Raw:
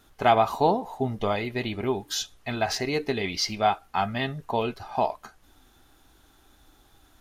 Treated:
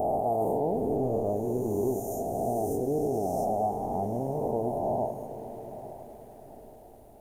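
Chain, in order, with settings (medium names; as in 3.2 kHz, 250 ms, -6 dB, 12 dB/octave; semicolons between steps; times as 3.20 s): reverse spectral sustain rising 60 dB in 2.82 s; inverse Chebyshev band-stop 1.4–4.7 kHz, stop band 50 dB; peak limiter -16.5 dBFS, peak gain reduction 9.5 dB; echo that smears into a reverb 903 ms, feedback 43%, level -13 dB; bit-crushed delay 105 ms, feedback 80%, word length 9-bit, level -14 dB; trim -3.5 dB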